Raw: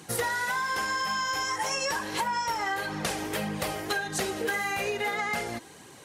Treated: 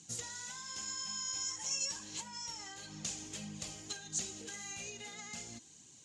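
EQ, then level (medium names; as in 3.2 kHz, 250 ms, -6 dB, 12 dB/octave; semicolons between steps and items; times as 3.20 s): four-pole ladder low-pass 7.3 kHz, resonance 75%; high-order bell 870 Hz -11 dB 2.8 oct; 0.0 dB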